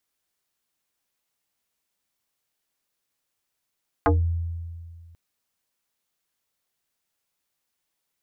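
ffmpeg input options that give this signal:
ffmpeg -f lavfi -i "aevalsrc='0.188*pow(10,-3*t/2.02)*sin(2*PI*84.1*t+4*pow(10,-3*t/0.2)*sin(2*PI*4.55*84.1*t))':duration=1.09:sample_rate=44100" out.wav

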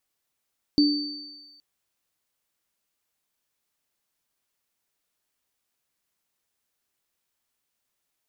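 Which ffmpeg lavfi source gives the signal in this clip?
ffmpeg -f lavfi -i "aevalsrc='0.2*pow(10,-3*t/0.87)*sin(2*PI*293*t)+0.0794*pow(10,-3*t/1.62)*sin(2*PI*4570*t)':duration=0.82:sample_rate=44100" out.wav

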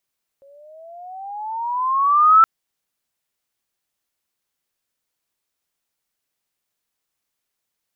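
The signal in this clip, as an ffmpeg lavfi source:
ffmpeg -f lavfi -i "aevalsrc='pow(10,(-6.5+39*(t/2.02-1))/20)*sin(2*PI*546*2.02/(15.5*log(2)/12)*(exp(15.5*log(2)/12*t/2.02)-1))':duration=2.02:sample_rate=44100" out.wav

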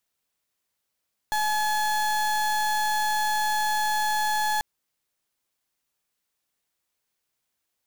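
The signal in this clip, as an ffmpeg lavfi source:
ffmpeg -f lavfi -i "aevalsrc='0.0596*(2*lt(mod(852*t,1),0.32)-1)':duration=3.29:sample_rate=44100" out.wav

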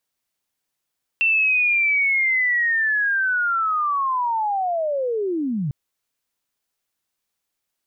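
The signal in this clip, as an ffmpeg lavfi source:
ffmpeg -f lavfi -i "aevalsrc='pow(10,(-15-6*t/4.5)/20)*sin(2*PI*(2700*t-2570*t*t/(2*4.5)))':duration=4.5:sample_rate=44100" out.wav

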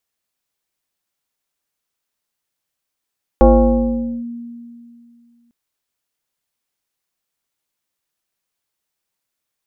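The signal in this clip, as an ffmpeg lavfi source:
ffmpeg -f lavfi -i "aevalsrc='0.631*pow(10,-3*t/2.49)*sin(2*PI*236*t+1.8*clip(1-t/0.83,0,1)*sin(2*PI*1.22*236*t))':duration=2.1:sample_rate=44100" out.wav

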